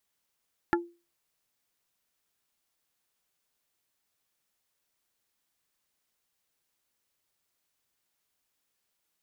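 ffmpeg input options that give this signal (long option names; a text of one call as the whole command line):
ffmpeg -f lavfi -i "aevalsrc='0.0944*pow(10,-3*t/0.31)*sin(2*PI*344*t)+0.0891*pow(10,-3*t/0.103)*sin(2*PI*860*t)+0.0841*pow(10,-3*t/0.059)*sin(2*PI*1376*t)+0.0794*pow(10,-3*t/0.045)*sin(2*PI*1720*t)':duration=0.45:sample_rate=44100" out.wav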